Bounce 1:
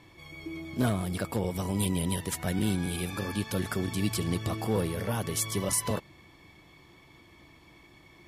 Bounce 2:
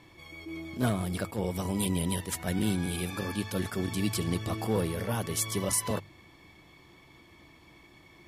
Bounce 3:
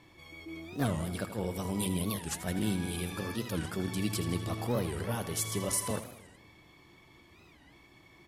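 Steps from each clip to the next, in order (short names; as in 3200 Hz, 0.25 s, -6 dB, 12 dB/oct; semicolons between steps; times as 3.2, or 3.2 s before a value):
notches 50/100/150 Hz; attack slew limiter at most 220 dB/s
on a send: feedback echo 81 ms, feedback 59%, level -12 dB; on the sum: record warp 45 rpm, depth 250 cents; gain -3 dB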